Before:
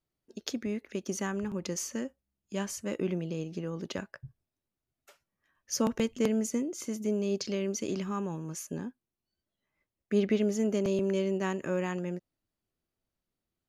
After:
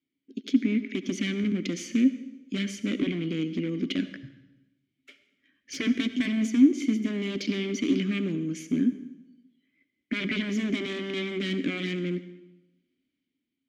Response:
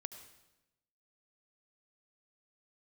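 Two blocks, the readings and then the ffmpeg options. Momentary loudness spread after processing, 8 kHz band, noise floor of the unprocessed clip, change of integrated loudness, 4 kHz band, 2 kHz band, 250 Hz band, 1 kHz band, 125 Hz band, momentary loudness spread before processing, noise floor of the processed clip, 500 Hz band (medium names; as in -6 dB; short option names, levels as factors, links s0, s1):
10 LU, -5.0 dB, under -85 dBFS, +4.5 dB, +7.5 dB, +8.5 dB, +7.0 dB, no reading, +2.5 dB, 11 LU, -82 dBFS, -3.0 dB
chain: -filter_complex "[0:a]dynaudnorm=f=110:g=11:m=2,aeval=exprs='0.0668*(abs(mod(val(0)/0.0668+3,4)-2)-1)':c=same,asplit=3[s0][s1][s2];[s0]bandpass=f=270:t=q:w=8,volume=1[s3];[s1]bandpass=f=2290:t=q:w=8,volume=0.501[s4];[s2]bandpass=f=3010:t=q:w=8,volume=0.355[s5];[s3][s4][s5]amix=inputs=3:normalize=0,asplit=2[s6][s7];[1:a]atrim=start_sample=2205[s8];[s7][s8]afir=irnorm=-1:irlink=0,volume=2.24[s9];[s6][s9]amix=inputs=2:normalize=0,volume=2.51"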